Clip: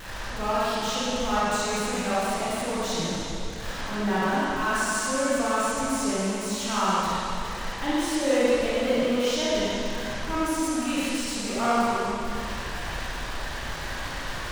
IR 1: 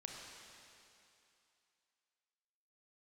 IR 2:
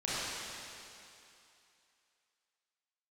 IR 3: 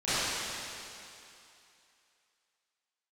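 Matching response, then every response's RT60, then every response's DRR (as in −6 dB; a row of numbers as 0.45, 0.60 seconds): 2; 2.7, 2.7, 2.7 seconds; −0.5, −10.5, −18.5 decibels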